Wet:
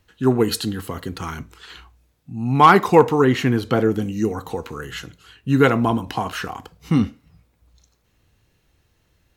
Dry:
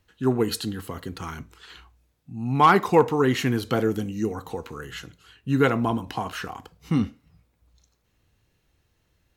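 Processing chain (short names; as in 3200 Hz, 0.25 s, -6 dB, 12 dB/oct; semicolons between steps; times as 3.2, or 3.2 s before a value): 3.24–4.02 high shelf 3900 Hz -8.5 dB; gain +5 dB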